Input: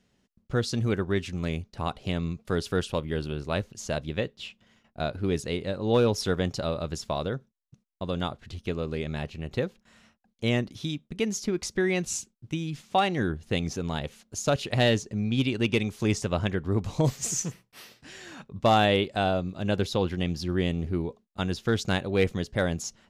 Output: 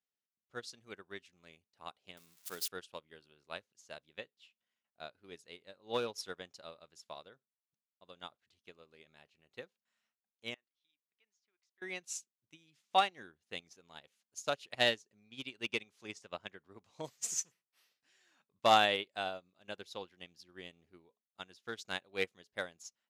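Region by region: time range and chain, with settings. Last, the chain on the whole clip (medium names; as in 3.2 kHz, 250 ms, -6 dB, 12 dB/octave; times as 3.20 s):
2.17–2.68 s: zero-crossing glitches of -24 dBFS + peaking EQ 91 Hz -6 dB 0.44 oct + hum notches 50/100/150 Hz
10.54–11.82 s: low-pass 1.9 kHz + differentiator
15.72–17.02 s: high-pass 49 Hz + upward compressor, threshold -31 dBFS + treble shelf 11 kHz -10 dB
whole clip: high-pass 1.1 kHz 6 dB/octave; upward expansion 2.5:1, over -41 dBFS; trim +2.5 dB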